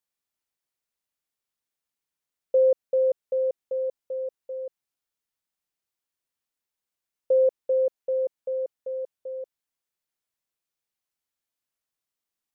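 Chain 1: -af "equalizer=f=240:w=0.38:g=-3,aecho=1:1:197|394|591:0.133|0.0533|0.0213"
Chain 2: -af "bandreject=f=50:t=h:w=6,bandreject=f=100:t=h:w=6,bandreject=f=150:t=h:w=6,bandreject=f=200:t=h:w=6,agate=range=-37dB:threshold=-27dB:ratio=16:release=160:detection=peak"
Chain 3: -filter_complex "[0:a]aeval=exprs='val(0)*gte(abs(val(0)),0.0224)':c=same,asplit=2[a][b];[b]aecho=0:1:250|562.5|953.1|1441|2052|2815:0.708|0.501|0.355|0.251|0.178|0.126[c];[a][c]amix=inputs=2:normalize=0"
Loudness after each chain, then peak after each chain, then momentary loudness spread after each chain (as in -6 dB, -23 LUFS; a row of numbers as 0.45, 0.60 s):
-29.0, -25.5, -24.0 LUFS; -16.5, -14.5, -14.5 dBFS; 15, 18, 19 LU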